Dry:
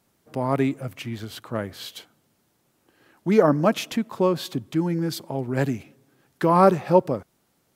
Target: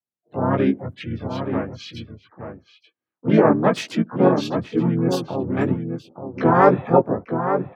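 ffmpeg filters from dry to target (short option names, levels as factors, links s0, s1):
-filter_complex "[0:a]highpass=f=89:w=0.5412,highpass=f=89:w=1.3066,afftdn=nr=35:nf=-38,adynamicequalizer=threshold=0.0141:dfrequency=270:dqfactor=5.1:tfrequency=270:tqfactor=5.1:attack=5:release=100:ratio=0.375:range=1.5:mode=boostabove:tftype=bell,flanger=delay=15.5:depth=3.4:speed=1.9,asplit=4[s0][s1][s2][s3];[s1]asetrate=33038,aresample=44100,atempo=1.33484,volume=0.631[s4];[s2]asetrate=58866,aresample=44100,atempo=0.749154,volume=0.398[s5];[s3]asetrate=66075,aresample=44100,atempo=0.66742,volume=0.224[s6];[s0][s4][s5][s6]amix=inputs=4:normalize=0,asplit=2[s7][s8];[s8]adelay=874.6,volume=0.447,highshelf=f=4000:g=-19.7[s9];[s7][s9]amix=inputs=2:normalize=0,volume=1.41"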